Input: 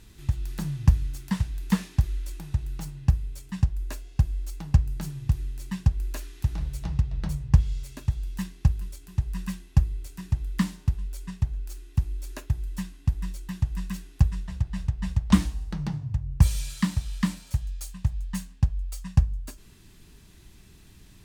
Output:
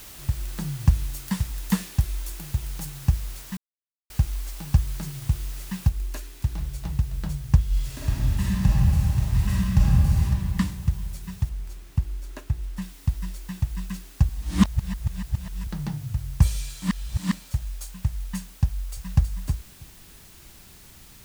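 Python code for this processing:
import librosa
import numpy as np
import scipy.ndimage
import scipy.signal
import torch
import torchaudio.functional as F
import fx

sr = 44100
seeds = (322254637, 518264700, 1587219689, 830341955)

y = fx.high_shelf(x, sr, hz=7300.0, db=11.5, at=(0.95, 3.06))
y = fx.noise_floor_step(y, sr, seeds[0], at_s=5.89, before_db=-44, after_db=-51, tilt_db=0.0)
y = fx.reverb_throw(y, sr, start_s=7.68, length_s=2.55, rt60_s=2.8, drr_db=-7.5)
y = fx.high_shelf(y, sr, hz=3500.0, db=-7.0, at=(11.49, 12.82))
y = fx.echo_throw(y, sr, start_s=18.65, length_s=0.64, ms=320, feedback_pct=10, wet_db=-7.0)
y = fx.edit(y, sr, fx.silence(start_s=3.57, length_s=0.53),
    fx.reverse_span(start_s=14.29, length_s=1.38),
    fx.reverse_span(start_s=16.82, length_s=0.5), tone=tone)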